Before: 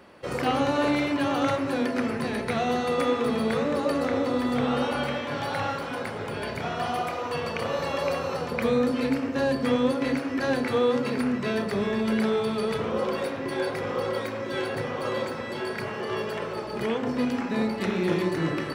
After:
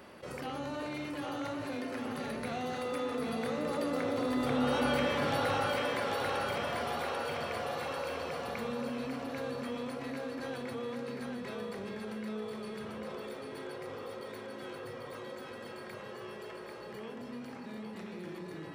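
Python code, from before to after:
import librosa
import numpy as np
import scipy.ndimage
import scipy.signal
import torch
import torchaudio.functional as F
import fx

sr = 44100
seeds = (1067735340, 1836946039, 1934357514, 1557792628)

y = fx.doppler_pass(x, sr, speed_mps=7, closest_m=2.6, pass_at_s=5.04)
y = fx.high_shelf(y, sr, hz=8900.0, db=7.0)
y = fx.echo_split(y, sr, split_hz=380.0, low_ms=125, high_ms=792, feedback_pct=52, wet_db=-4.5)
y = fx.env_flatten(y, sr, amount_pct=50)
y = F.gain(torch.from_numpy(y), -3.5).numpy()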